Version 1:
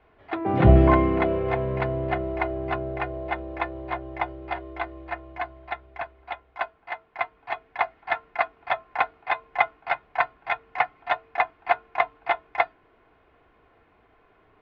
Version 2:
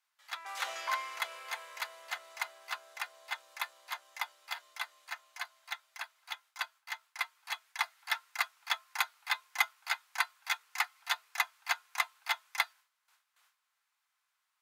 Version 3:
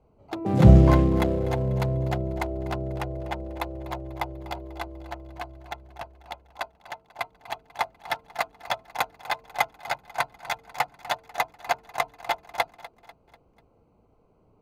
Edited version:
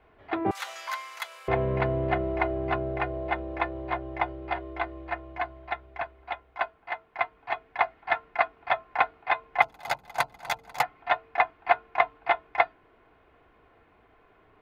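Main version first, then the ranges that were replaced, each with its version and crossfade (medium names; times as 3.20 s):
1
0.51–1.48 s: from 2
9.62–10.83 s: from 3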